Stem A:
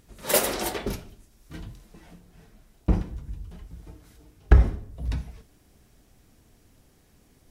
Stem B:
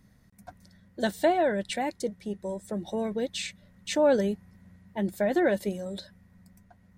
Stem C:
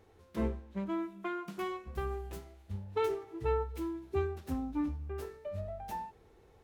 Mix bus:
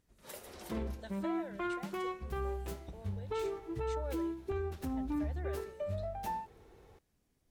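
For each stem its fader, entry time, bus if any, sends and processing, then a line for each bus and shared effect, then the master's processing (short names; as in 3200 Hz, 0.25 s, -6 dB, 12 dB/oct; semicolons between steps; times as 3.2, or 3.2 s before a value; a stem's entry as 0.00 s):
-18.0 dB, 0.00 s, no send, compressor 10:1, threshold -27 dBFS, peak gain reduction 18.5 dB
-20.0 dB, 0.00 s, no send, HPF 440 Hz
+2.5 dB, 0.35 s, no send, limiter -31.5 dBFS, peak gain reduction 10.5 dB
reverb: off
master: dry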